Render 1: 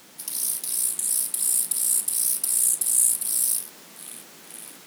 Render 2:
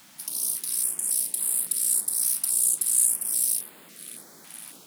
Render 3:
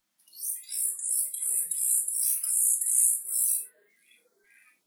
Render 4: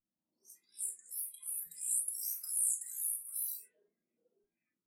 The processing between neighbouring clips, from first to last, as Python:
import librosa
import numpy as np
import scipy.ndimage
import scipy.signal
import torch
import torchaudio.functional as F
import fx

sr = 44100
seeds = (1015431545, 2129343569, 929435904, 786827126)

y1 = fx.filter_held_notch(x, sr, hz=3.6, low_hz=430.0, high_hz=5800.0)
y1 = F.gain(torch.from_numpy(y1), -1.5).numpy()
y2 = fx.noise_reduce_blind(y1, sr, reduce_db=25)
y2 = fx.rev_gated(y2, sr, seeds[0], gate_ms=120, shape='falling', drr_db=3.0)
y2 = F.gain(torch.from_numpy(y2), -3.0).numpy()
y3 = fx.env_lowpass(y2, sr, base_hz=560.0, full_db=-25.5)
y3 = fx.phaser_stages(y3, sr, stages=6, low_hz=460.0, high_hz=3200.0, hz=0.54, feedback_pct=40)
y3 = F.gain(torch.from_numpy(y3), -7.0).numpy()